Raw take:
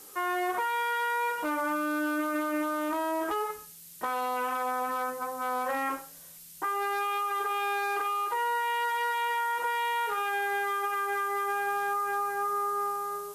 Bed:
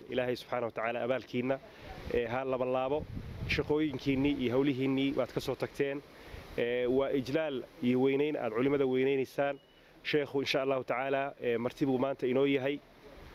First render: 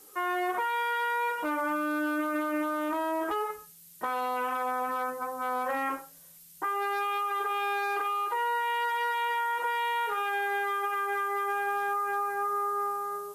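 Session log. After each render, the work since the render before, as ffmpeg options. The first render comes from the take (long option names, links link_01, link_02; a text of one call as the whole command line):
ffmpeg -i in.wav -af "afftdn=noise_reduction=6:noise_floor=-49" out.wav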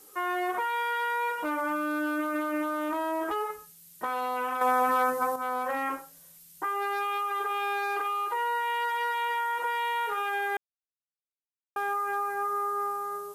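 ffmpeg -i in.wav -filter_complex "[0:a]asettb=1/sr,asplit=3[link_01][link_02][link_03];[link_01]atrim=end=4.614[link_04];[link_02]atrim=start=4.61:end=5.36,asetpts=PTS-STARTPTS,afade=type=in:duration=0.004:curve=qsin,afade=type=out:start_time=0.746:duration=0.004:curve=qsin,acontrast=74[link_05];[link_03]atrim=start=5.356[link_06];[link_04][link_05]acrossfade=duration=0.004:curve1=hsin:curve2=qsin[link_07];[link_07][link_06]acrossfade=duration=0.004:curve1=qsin:curve2=hsin,asplit=3[link_08][link_09][link_10];[link_08]atrim=end=10.57,asetpts=PTS-STARTPTS,afade=type=out:start_time=10.566:duration=0.004:curve=hsin[link_11];[link_09]atrim=start=10.57:end=11.76,asetpts=PTS-STARTPTS,volume=0[link_12];[link_10]atrim=start=11.76,asetpts=PTS-STARTPTS,afade=type=in:duration=0.004:curve=hsin[link_13];[link_11][link_12][link_13]concat=n=3:v=0:a=1" out.wav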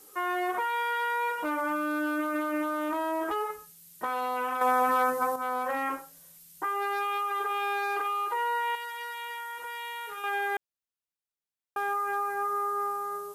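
ffmpeg -i in.wav -filter_complex "[0:a]asettb=1/sr,asplit=3[link_01][link_02][link_03];[link_01]atrim=end=8.754[link_04];[link_02]atrim=start=8.75:end=10.24,asetpts=PTS-STARTPTS,afade=type=in:duration=0.004:curve=qsin,afade=type=out:start_time=1.486:duration=0.004:curve=qsin,equalizer=frequency=680:width=0.38:gain=-11[link_05];[link_03]atrim=start=10.236[link_06];[link_04][link_05]acrossfade=duration=0.004:curve1=hsin:curve2=qsin[link_07];[link_07][link_06]acrossfade=duration=0.004:curve1=qsin:curve2=hsin" out.wav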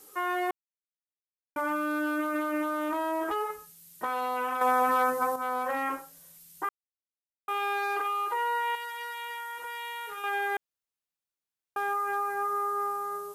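ffmpeg -i in.wav -filter_complex "[0:a]asplit=5[link_01][link_02][link_03][link_04][link_05];[link_01]atrim=end=0.51,asetpts=PTS-STARTPTS,afade=type=out:start_time=0.506:duration=0.004:curve=hsin[link_06];[link_02]atrim=start=0.51:end=1.56,asetpts=PTS-STARTPTS,volume=0[link_07];[link_03]atrim=start=1.56:end=6.69,asetpts=PTS-STARTPTS,afade=type=in:duration=0.004:curve=hsin,afade=type=out:start_time=5.126:duration=0.004:curve=hsin[link_08];[link_04]atrim=start=6.69:end=7.48,asetpts=PTS-STARTPTS,volume=0[link_09];[link_05]atrim=start=7.48,asetpts=PTS-STARTPTS,afade=type=in:duration=0.004:curve=hsin[link_10];[link_06][link_07][link_08][link_09][link_10]concat=n=5:v=0:a=1" out.wav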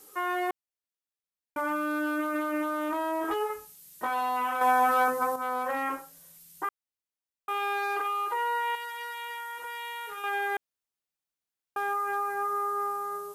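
ffmpeg -i in.wav -filter_complex "[0:a]asettb=1/sr,asplit=3[link_01][link_02][link_03];[link_01]atrim=end=3.224[link_04];[link_02]atrim=start=3.22:end=5.08,asetpts=PTS-STARTPTS,afade=type=in:duration=0.004:curve=qsin,afade=type=out:start_time=1.856:duration=0.004:curve=qsin,asplit=2[link_05][link_06];[link_06]adelay=21,volume=-4dB[link_07];[link_05][link_07]amix=inputs=2:normalize=0,atrim=end_sample=82026[link_08];[link_03]atrim=start=5.076[link_09];[link_04][link_08]acrossfade=duration=0.004:curve1=hsin:curve2=qsin[link_10];[link_10][link_09]acrossfade=duration=0.004:curve1=qsin:curve2=hsin" out.wav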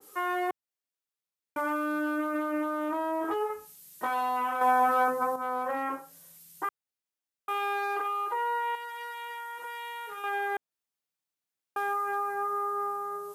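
ffmpeg -i in.wav -af "highpass=89,adynamicequalizer=threshold=0.00794:dfrequency=1700:dqfactor=0.7:tfrequency=1700:tqfactor=0.7:attack=5:release=100:ratio=0.375:range=3.5:mode=cutabove:tftype=highshelf" out.wav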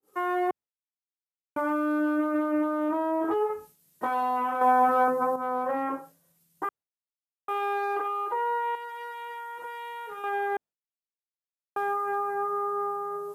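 ffmpeg -i in.wav -af "agate=range=-33dB:threshold=-45dB:ratio=3:detection=peak,tiltshelf=frequency=1300:gain=6" out.wav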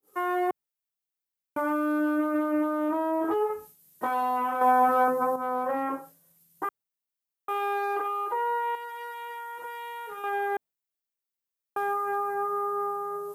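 ffmpeg -i in.wav -af "highshelf=frequency=12000:gain=11.5" out.wav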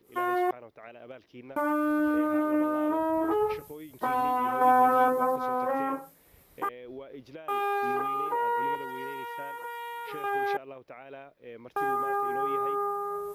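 ffmpeg -i in.wav -i bed.wav -filter_complex "[1:a]volume=-13.5dB[link_01];[0:a][link_01]amix=inputs=2:normalize=0" out.wav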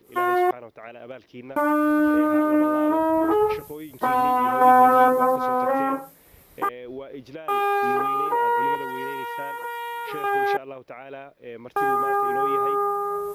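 ffmpeg -i in.wav -af "volume=6.5dB" out.wav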